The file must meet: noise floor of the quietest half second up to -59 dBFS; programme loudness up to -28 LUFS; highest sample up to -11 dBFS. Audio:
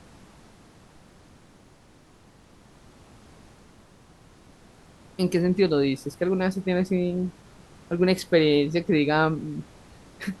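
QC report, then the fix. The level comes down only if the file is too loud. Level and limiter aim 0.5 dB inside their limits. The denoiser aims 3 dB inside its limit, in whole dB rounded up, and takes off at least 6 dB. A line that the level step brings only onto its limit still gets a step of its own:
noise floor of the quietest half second -54 dBFS: fail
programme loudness -24.0 LUFS: fail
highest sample -6.5 dBFS: fail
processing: denoiser 6 dB, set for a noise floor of -54 dBFS; gain -4.5 dB; limiter -11.5 dBFS

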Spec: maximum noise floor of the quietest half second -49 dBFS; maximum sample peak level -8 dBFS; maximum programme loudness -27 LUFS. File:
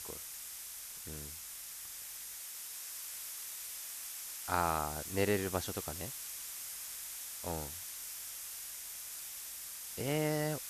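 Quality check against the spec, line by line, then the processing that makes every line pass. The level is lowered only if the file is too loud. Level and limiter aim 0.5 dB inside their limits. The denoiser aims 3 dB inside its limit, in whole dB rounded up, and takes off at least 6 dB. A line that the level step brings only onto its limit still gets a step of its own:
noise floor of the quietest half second -47 dBFS: fail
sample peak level -15.0 dBFS: OK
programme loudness -39.0 LUFS: OK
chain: denoiser 6 dB, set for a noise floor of -47 dBFS

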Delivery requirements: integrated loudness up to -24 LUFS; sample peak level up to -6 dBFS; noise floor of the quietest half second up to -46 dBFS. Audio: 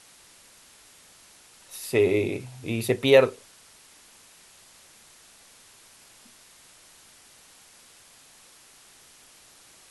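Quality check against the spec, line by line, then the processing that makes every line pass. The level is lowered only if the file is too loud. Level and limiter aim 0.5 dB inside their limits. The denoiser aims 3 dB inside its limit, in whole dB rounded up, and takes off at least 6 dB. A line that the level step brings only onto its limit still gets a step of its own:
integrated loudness -23.0 LUFS: fail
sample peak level -5.5 dBFS: fail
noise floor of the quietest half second -54 dBFS: OK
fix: gain -1.5 dB

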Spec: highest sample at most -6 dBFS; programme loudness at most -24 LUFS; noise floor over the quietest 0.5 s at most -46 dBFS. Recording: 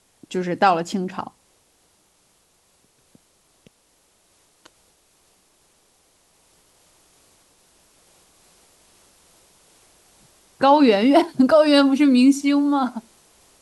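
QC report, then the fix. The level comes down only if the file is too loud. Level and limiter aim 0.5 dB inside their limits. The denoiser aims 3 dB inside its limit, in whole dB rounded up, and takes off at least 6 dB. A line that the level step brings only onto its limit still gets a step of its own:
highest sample -3.5 dBFS: fail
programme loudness -17.5 LUFS: fail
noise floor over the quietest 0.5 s -62 dBFS: OK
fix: gain -7 dB

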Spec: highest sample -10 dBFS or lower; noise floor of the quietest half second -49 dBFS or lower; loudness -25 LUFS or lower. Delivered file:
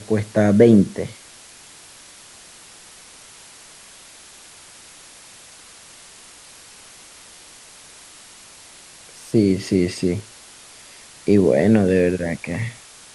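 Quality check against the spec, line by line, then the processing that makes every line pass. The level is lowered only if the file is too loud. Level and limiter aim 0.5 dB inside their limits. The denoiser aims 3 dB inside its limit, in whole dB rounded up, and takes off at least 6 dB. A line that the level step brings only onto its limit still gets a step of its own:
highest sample -2.0 dBFS: fail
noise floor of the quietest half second -45 dBFS: fail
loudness -18.5 LUFS: fail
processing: gain -7 dB; limiter -10.5 dBFS

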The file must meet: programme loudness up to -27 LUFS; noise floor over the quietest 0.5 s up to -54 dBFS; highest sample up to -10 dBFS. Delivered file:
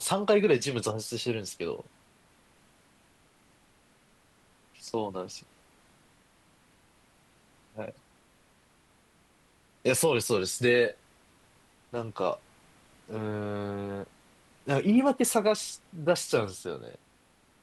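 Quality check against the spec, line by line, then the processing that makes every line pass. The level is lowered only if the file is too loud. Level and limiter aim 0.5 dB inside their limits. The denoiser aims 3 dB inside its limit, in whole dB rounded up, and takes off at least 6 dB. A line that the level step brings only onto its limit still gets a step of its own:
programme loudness -29.0 LUFS: OK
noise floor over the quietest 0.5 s -64 dBFS: OK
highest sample -12.0 dBFS: OK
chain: none

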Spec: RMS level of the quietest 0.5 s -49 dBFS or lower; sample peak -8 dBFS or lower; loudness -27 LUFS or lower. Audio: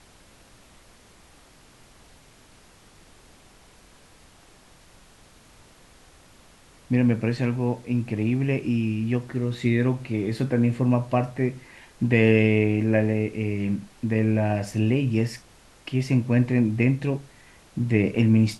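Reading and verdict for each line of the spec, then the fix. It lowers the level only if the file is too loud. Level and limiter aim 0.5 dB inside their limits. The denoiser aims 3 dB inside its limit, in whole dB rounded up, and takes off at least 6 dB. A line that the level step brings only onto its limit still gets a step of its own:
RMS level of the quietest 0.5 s -53 dBFS: OK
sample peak -5.5 dBFS: fail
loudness -24.0 LUFS: fail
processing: gain -3.5 dB

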